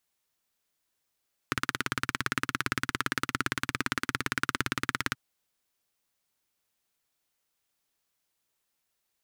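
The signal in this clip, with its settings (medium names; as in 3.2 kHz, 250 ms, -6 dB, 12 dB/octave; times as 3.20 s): single-cylinder engine model, steady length 3.63 s, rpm 2100, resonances 130/260/1400 Hz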